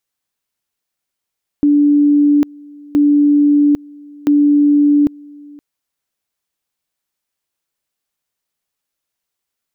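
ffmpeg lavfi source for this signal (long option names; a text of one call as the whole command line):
ffmpeg -f lavfi -i "aevalsrc='pow(10,(-7.5-26*gte(mod(t,1.32),0.8))/20)*sin(2*PI*291*t)':duration=3.96:sample_rate=44100" out.wav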